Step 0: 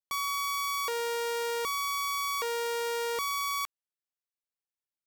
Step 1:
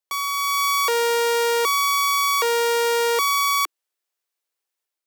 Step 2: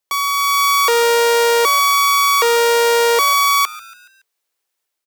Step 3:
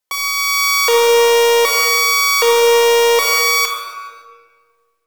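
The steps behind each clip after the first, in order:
steep high-pass 310 Hz 72 dB/oct; AGC gain up to 5.5 dB; gain +6 dB
in parallel at -12 dB: soft clip -25 dBFS, distortion -7 dB; on the sum: frequency-shifting echo 0.141 s, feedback 47%, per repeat +110 Hz, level -19 dB; gain +5.5 dB
reverb RT60 1.6 s, pre-delay 4 ms, DRR -0.5 dB; gain -1 dB

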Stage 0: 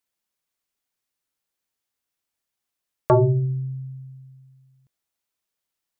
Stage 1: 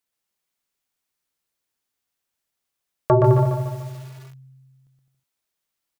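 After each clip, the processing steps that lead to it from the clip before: on a send: bouncing-ball echo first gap 0.12 s, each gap 0.75×, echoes 5; on the sum: lo-fi delay 0.146 s, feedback 55%, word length 7-bit, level -6 dB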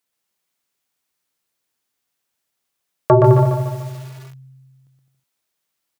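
HPF 84 Hz; gain +4.5 dB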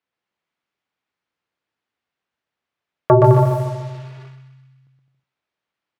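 thinning echo 0.127 s, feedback 60%, high-pass 820 Hz, level -8 dB; low-pass opened by the level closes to 2600 Hz, open at -13 dBFS

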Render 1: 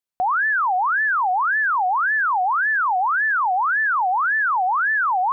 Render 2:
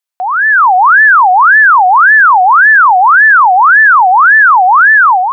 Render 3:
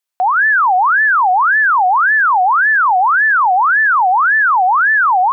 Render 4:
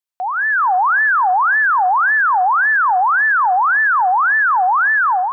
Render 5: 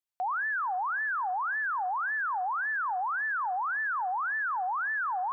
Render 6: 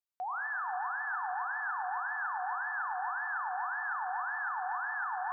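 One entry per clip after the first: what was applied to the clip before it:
AGC gain up to 9.5 dB; HPF 670 Hz; gain +6 dB
dynamic EQ 1200 Hz, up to -4 dB, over -15 dBFS, Q 1.6; limiter -10 dBFS, peak gain reduction 7 dB; gain +1.5 dB
AGC gain up to 8 dB; on a send at -23 dB: reverb RT60 0.70 s, pre-delay 86 ms; on the sum: gain -8.5 dB
limiter -21.5 dBFS, peak gain reduction 11.5 dB; gain -5.5 dB
darkening echo 0.438 s, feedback 71%, low-pass 1100 Hz, level -10.5 dB; plate-style reverb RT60 4.5 s, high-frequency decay 0.85×, DRR 3.5 dB; gain -6.5 dB

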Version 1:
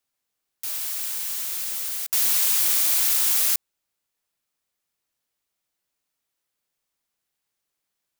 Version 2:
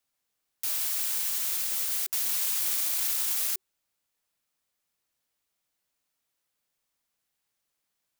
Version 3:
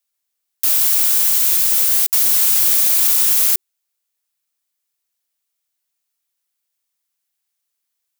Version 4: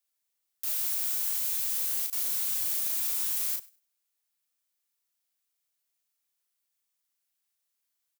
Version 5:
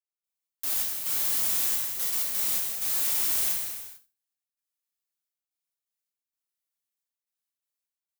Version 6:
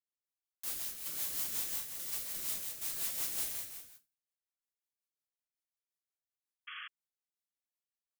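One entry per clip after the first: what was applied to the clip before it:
notch 380 Hz, Q 12; limiter -18.5 dBFS, peak gain reduction 10.5 dB
tilt +2.5 dB/oct; sample leveller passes 2
limiter -19.5 dBFS, peak gain reduction 11.5 dB; doubler 36 ms -4 dB; thinning echo 99 ms, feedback 19%, high-pass 730 Hz, level -21.5 dB; gain -6 dB
sample leveller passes 3; step gate "..xx.xx..xxxxxx" 128 bpm -12 dB; non-linear reverb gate 0.48 s falling, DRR -2.5 dB; gain -5.5 dB
rotary speaker horn 5.5 Hz; painted sound noise, 6.67–6.88, 1100–3400 Hz -39 dBFS; gain -6.5 dB

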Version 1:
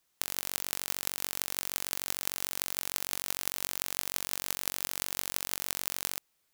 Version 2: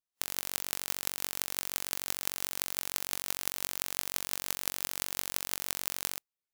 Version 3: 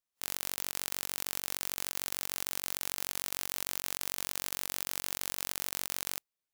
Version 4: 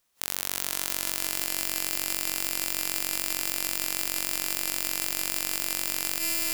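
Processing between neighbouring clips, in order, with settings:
spectral expander 1.5:1
negative-ratio compressor -37 dBFS, ratio -0.5
on a send: swelling echo 98 ms, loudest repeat 5, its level -16.5 dB; on the sum: maximiser +17.5 dB; gain -1 dB

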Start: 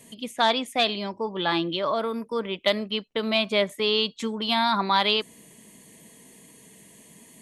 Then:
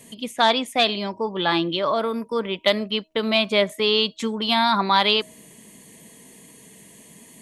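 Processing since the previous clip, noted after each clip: de-hum 317.3 Hz, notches 3; gain +3.5 dB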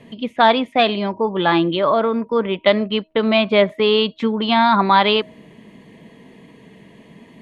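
air absorption 350 m; gain +7 dB

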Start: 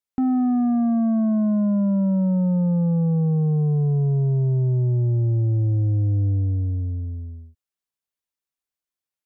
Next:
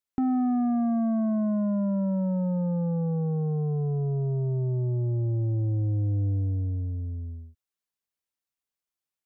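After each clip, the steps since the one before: dynamic EQ 150 Hz, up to -6 dB, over -33 dBFS, Q 0.87; gain -1.5 dB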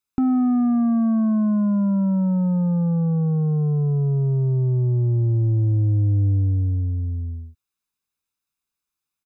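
comb 0.8 ms, depth 51%; gain +4 dB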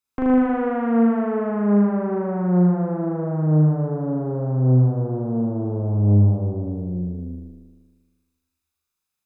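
added harmonics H 4 -8 dB, 5 -15 dB, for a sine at -12 dBFS; flutter echo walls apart 6.7 m, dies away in 1.4 s; gain -7.5 dB

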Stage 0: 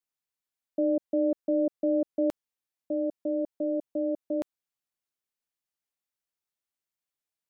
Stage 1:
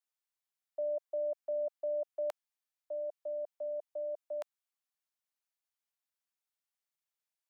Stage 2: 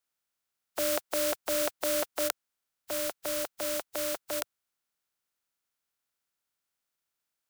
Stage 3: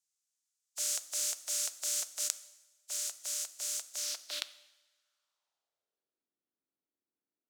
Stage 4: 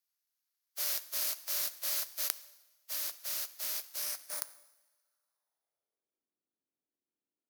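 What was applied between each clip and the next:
steep high-pass 600 Hz 36 dB/oct; gain -2.5 dB
spectral contrast lowered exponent 0.31; bell 1400 Hz +5.5 dB 0.25 oct; gain +6 dB
band-pass sweep 6900 Hz -> 300 Hz, 3.93–6.26; two-slope reverb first 0.93 s, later 2.7 s, from -21 dB, DRR 12.5 dB; gain +7 dB
FFT order left unsorted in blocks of 16 samples

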